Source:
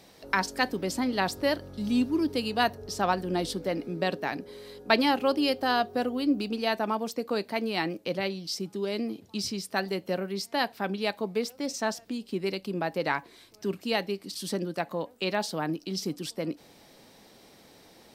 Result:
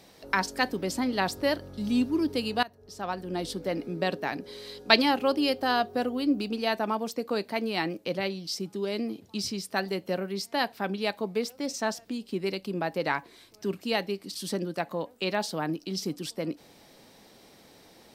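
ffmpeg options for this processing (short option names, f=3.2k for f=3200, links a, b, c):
-filter_complex "[0:a]asettb=1/sr,asplit=3[a][b][c];[a]atrim=end=4.444[d];[b]atrim=start=4.44:end=5.02,asetpts=PTS-STARTPTS,afade=t=in:d=0.004:c=qsin,afade=t=out:st=0.576:d=0.004:c=qsin,equalizer=f=4.5k:t=o:w=1.8:g=8.5[e];[c]atrim=start=5.016[f];[d][e]acrossfade=d=0.004:c1=hsin:c2=qsin[g];[g][f]acrossfade=d=0.004:c1=qsin:c2=hsin,asplit=2[h][i];[h]atrim=end=2.63,asetpts=PTS-STARTPTS,afade=t=out:st=2.626:d=0.004:c=hsin:silence=0.0841395[j];[i]atrim=start=2.63,asetpts=PTS-STARTPTS,afade=t=in:d=1.14:silence=0.0841395[k];[j][k]concat=n=2:v=0:a=1"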